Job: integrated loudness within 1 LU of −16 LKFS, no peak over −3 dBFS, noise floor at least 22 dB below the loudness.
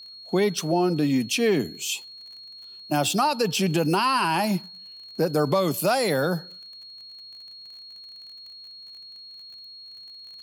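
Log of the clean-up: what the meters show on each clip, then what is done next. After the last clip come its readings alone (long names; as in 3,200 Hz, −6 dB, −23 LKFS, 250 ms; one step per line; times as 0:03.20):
crackle rate 27 per second; interfering tone 4,300 Hz; level of the tone −41 dBFS; integrated loudness −24.0 LKFS; sample peak −11.0 dBFS; target loudness −16.0 LKFS
→ click removal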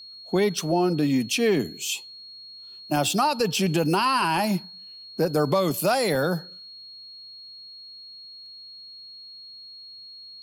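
crackle rate 0.38 per second; interfering tone 4,300 Hz; level of the tone −41 dBFS
→ notch filter 4,300 Hz, Q 30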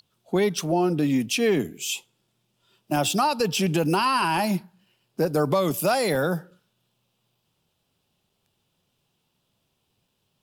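interfering tone none found; integrated loudness −24.0 LKFS; sample peak −11.5 dBFS; target loudness −16.0 LKFS
→ level +8 dB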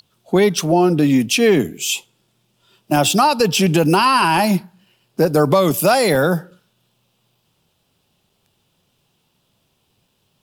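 integrated loudness −16.0 LKFS; sample peak −3.5 dBFS; background noise floor −66 dBFS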